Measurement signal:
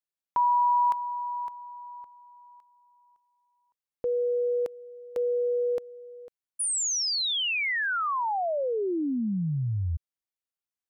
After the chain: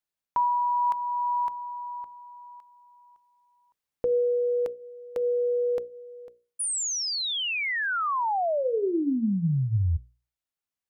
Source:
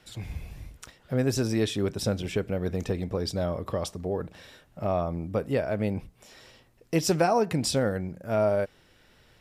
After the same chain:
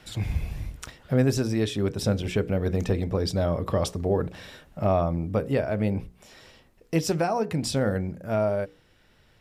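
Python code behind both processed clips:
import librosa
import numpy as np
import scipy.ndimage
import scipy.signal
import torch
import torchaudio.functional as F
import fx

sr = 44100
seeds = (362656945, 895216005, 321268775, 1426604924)

y = fx.bass_treble(x, sr, bass_db=3, treble_db=-2)
y = fx.hum_notches(y, sr, base_hz=60, count=9)
y = fx.rider(y, sr, range_db=5, speed_s=0.5)
y = y * librosa.db_to_amplitude(1.5)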